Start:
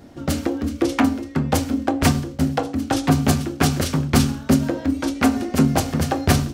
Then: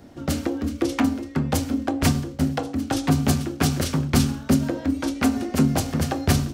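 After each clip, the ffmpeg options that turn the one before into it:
-filter_complex "[0:a]acrossover=split=340|3000[a][b][c];[b]acompressor=threshold=-25dB:ratio=2[d];[a][d][c]amix=inputs=3:normalize=0,volume=-2dB"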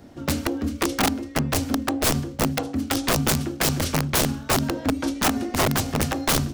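-af "aeval=exprs='(mod(5.31*val(0)+1,2)-1)/5.31':c=same"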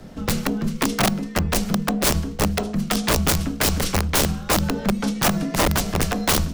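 -filter_complex "[0:a]asplit=2[a][b];[b]alimiter=level_in=2.5dB:limit=-24dB:level=0:latency=1:release=215,volume=-2.5dB,volume=0dB[c];[a][c]amix=inputs=2:normalize=0,afreqshift=-68"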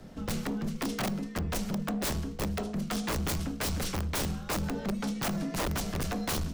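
-af "volume=20.5dB,asoftclip=hard,volume=-20.5dB,volume=-7.5dB"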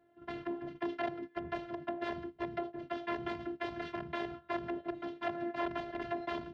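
-af "agate=range=-14dB:threshold=-34dB:ratio=16:detection=peak,afftfilt=real='hypot(re,im)*cos(PI*b)':imag='0':win_size=512:overlap=0.75,highpass=140,equalizer=f=160:t=q:w=4:g=7,equalizer=f=300:t=q:w=4:g=-7,equalizer=f=1.2k:t=q:w=4:g=-8,equalizer=f=2.4k:t=q:w=4:g=-7,lowpass=f=2.6k:w=0.5412,lowpass=f=2.6k:w=1.3066,volume=4dB"

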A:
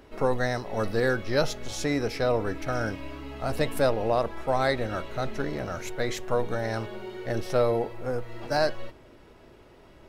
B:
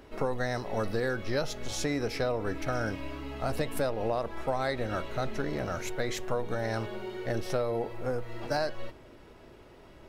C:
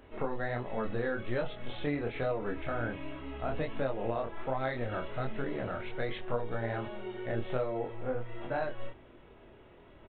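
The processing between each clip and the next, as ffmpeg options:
-af "acompressor=threshold=-26dB:ratio=6"
-af "flanger=delay=22.5:depth=4.7:speed=1.3,aresample=8000,aresample=44100"

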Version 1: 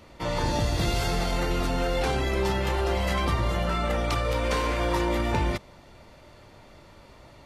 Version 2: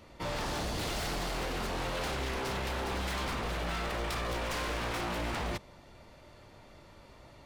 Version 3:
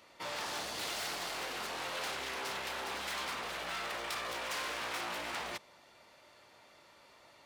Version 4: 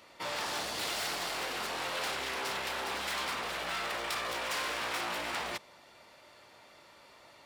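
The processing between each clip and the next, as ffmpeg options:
-af "aeval=exprs='0.0531*(abs(mod(val(0)/0.0531+3,4)-2)-1)':c=same,volume=-4dB"
-af "highpass=f=1k:p=1"
-af "bandreject=f=6.3k:w=28,volume=3.5dB"

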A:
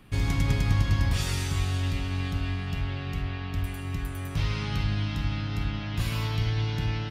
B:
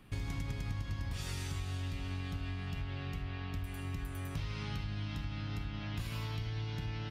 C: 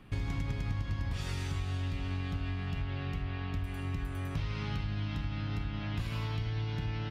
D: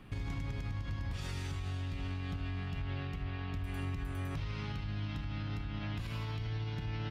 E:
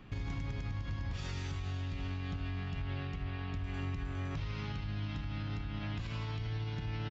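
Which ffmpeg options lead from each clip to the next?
-af "acompressor=threshold=-30dB:ratio=5,volume=-5dB"
-af "highshelf=f=6k:g=-11.5,volume=4dB"
-af "alimiter=level_in=7dB:limit=-24dB:level=0:latency=1:release=94,volume=-7dB,volume=1dB"
-af "aresample=16000,aresample=44100"

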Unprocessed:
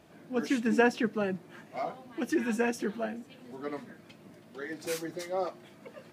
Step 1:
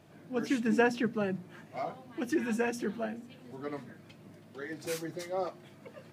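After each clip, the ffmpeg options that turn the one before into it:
-af "equalizer=f=120:t=o:w=0.8:g=10,bandreject=f=60:t=h:w=6,bandreject=f=120:t=h:w=6,bandreject=f=180:t=h:w=6,bandreject=f=240:t=h:w=6,volume=-2dB"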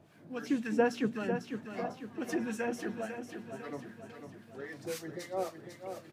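-filter_complex "[0:a]acrossover=split=1100[a][b];[a]aeval=exprs='val(0)*(1-0.7/2+0.7/2*cos(2*PI*3.7*n/s))':c=same[c];[b]aeval=exprs='val(0)*(1-0.7/2-0.7/2*cos(2*PI*3.7*n/s))':c=same[d];[c][d]amix=inputs=2:normalize=0,aecho=1:1:499|998|1497|1996|2495|2994:0.398|0.207|0.108|0.056|0.0291|0.0151"

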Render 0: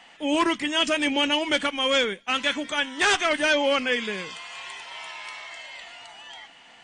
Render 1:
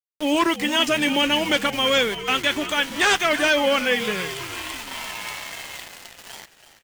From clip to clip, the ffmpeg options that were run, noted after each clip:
-filter_complex "[0:a]asplit=2[a][b];[b]acompressor=threshold=-31dB:ratio=6,volume=1.5dB[c];[a][c]amix=inputs=2:normalize=0,aeval=exprs='val(0)*gte(abs(val(0)),0.0299)':c=same,asplit=6[d][e][f][g][h][i];[e]adelay=330,afreqshift=-78,volume=-12.5dB[j];[f]adelay=660,afreqshift=-156,volume=-19.1dB[k];[g]adelay=990,afreqshift=-234,volume=-25.6dB[l];[h]adelay=1320,afreqshift=-312,volume=-32.2dB[m];[i]adelay=1650,afreqshift=-390,volume=-38.7dB[n];[d][j][k][l][m][n]amix=inputs=6:normalize=0"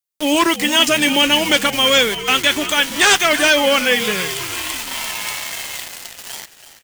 -af "highshelf=f=4.2k:g=9,volume=4dB"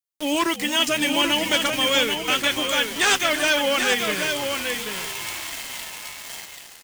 -af "aecho=1:1:786:0.531,volume=-7dB"

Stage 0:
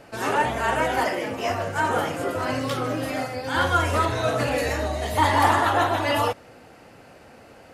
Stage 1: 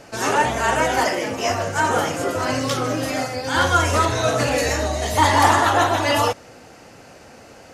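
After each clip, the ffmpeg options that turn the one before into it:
-af "equalizer=f=6.2k:w=1.6:g=9.5,volume=3.5dB"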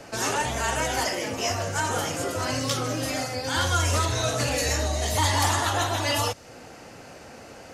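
-filter_complex "[0:a]acrossover=split=120|3000[a][b][c];[b]acompressor=threshold=-32dB:ratio=2[d];[a][d][c]amix=inputs=3:normalize=0"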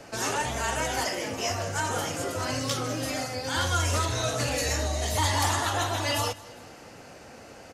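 -af "aecho=1:1:202|404|606|808:0.0891|0.049|0.027|0.0148,volume=-2.5dB"

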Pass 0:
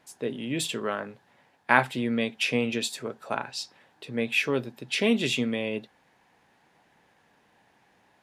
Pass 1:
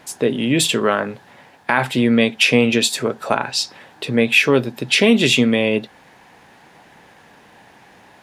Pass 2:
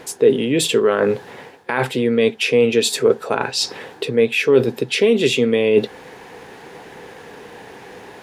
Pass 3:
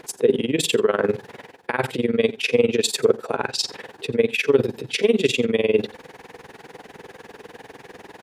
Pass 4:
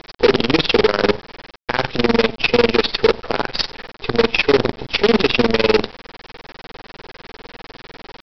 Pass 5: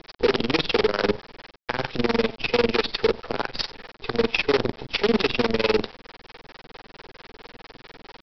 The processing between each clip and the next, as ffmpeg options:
-filter_complex "[0:a]asplit=2[a][b];[b]acompressor=threshold=-35dB:ratio=6,volume=0dB[c];[a][c]amix=inputs=2:normalize=0,alimiter=level_in=11dB:limit=-1dB:release=50:level=0:latency=1,volume=-1dB"
-af "areverse,acompressor=threshold=-26dB:ratio=4,areverse,superequalizer=6b=1.41:7b=3.16,volume=7dB"
-af "tremolo=f=20:d=0.91,aecho=1:1:88:0.0944"
-af "alimiter=limit=-10dB:level=0:latency=1:release=51,aresample=11025,acrusher=bits=4:dc=4:mix=0:aa=0.000001,aresample=44100,volume=6.5dB"
-filter_complex "[0:a]acrossover=split=460[a][b];[a]aeval=exprs='val(0)*(1-0.5/2+0.5/2*cos(2*PI*4.5*n/s))':c=same[c];[b]aeval=exprs='val(0)*(1-0.5/2-0.5/2*cos(2*PI*4.5*n/s))':c=same[d];[c][d]amix=inputs=2:normalize=0,volume=-4.5dB"

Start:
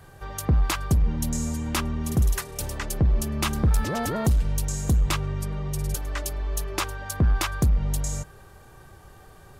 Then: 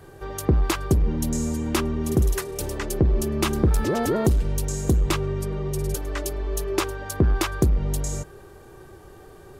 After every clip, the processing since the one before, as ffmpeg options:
-af "equalizer=f=370:t=o:w=0.86:g=11.5"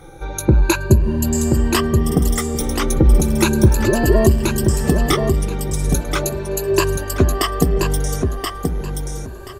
-filter_complex "[0:a]afftfilt=real='re*pow(10,18/40*sin(2*PI*(1.4*log(max(b,1)*sr/1024/100)/log(2)-(0.36)*(pts-256)/sr)))':imag='im*pow(10,18/40*sin(2*PI*(1.4*log(max(b,1)*sr/1024/100)/log(2)-(0.36)*(pts-256)/sr)))':win_size=1024:overlap=0.75,asplit=2[a][b];[b]aecho=0:1:1029|2058|3087:0.562|0.118|0.0248[c];[a][c]amix=inputs=2:normalize=0,volume=3dB"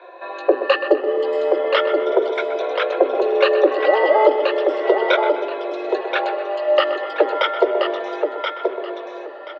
-filter_complex "[0:a]asplit=2[a][b];[b]adelay=126,lowpass=f=2.4k:p=1,volume=-10.5dB,asplit=2[c][d];[d]adelay=126,lowpass=f=2.4k:p=1,volume=0.52,asplit=2[e][f];[f]adelay=126,lowpass=f=2.4k:p=1,volume=0.52,asplit=2[g][h];[h]adelay=126,lowpass=f=2.4k:p=1,volume=0.52,asplit=2[i][j];[j]adelay=126,lowpass=f=2.4k:p=1,volume=0.52,asplit=2[k][l];[l]adelay=126,lowpass=f=2.4k:p=1,volume=0.52[m];[a][c][e][g][i][k][m]amix=inputs=7:normalize=0,highpass=f=160:t=q:w=0.5412,highpass=f=160:t=q:w=1.307,lowpass=f=3.5k:t=q:w=0.5176,lowpass=f=3.5k:t=q:w=0.7071,lowpass=f=3.5k:t=q:w=1.932,afreqshift=210,volume=1.5dB"

